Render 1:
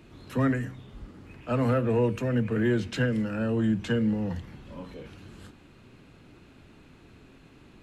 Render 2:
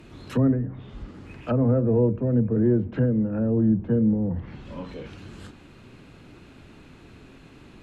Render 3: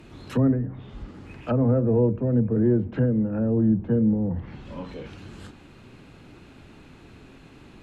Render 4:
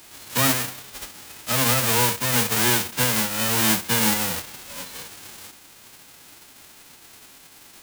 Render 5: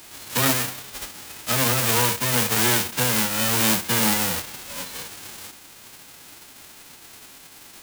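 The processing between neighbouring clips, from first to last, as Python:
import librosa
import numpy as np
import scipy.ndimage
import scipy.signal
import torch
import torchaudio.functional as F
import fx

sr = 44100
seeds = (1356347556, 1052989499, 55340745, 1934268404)

y1 = fx.env_lowpass_down(x, sr, base_hz=550.0, full_db=-26.0)
y1 = F.gain(torch.from_numpy(y1), 5.0).numpy()
y2 = fx.peak_eq(y1, sr, hz=820.0, db=2.5, octaves=0.25)
y3 = fx.envelope_flatten(y2, sr, power=0.1)
y4 = fx.transformer_sat(y3, sr, knee_hz=1300.0)
y4 = F.gain(torch.from_numpy(y4), 2.5).numpy()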